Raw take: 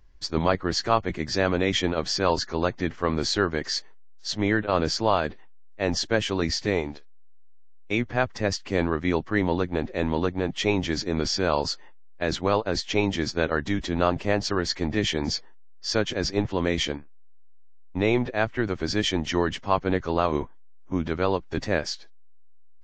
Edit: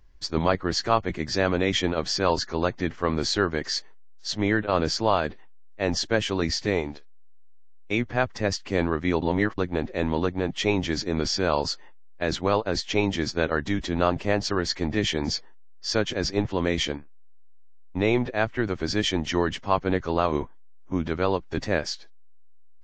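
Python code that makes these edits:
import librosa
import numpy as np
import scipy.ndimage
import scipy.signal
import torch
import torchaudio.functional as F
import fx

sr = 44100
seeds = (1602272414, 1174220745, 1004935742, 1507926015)

y = fx.edit(x, sr, fx.reverse_span(start_s=9.22, length_s=0.36), tone=tone)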